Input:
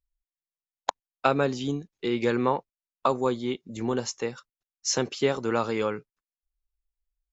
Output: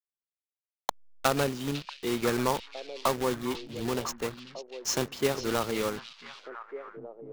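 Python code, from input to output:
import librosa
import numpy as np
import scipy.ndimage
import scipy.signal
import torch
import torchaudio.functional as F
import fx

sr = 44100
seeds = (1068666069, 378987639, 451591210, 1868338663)

y = fx.block_float(x, sr, bits=3)
y = fx.backlash(y, sr, play_db=-37.0)
y = fx.echo_stepped(y, sr, ms=499, hz=3500.0, octaves=-1.4, feedback_pct=70, wet_db=-5.5)
y = y * librosa.db_to_amplitude(-3.0)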